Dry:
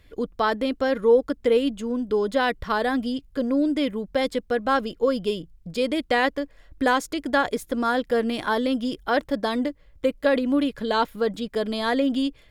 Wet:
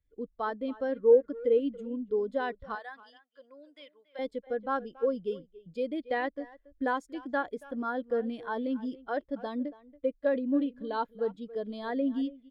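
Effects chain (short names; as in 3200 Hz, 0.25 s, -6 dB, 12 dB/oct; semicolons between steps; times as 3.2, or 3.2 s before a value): 2.75–4.19 HPF 920 Hz 12 dB/oct; speakerphone echo 0.28 s, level -11 dB; spectral expander 1.5:1; gain -3.5 dB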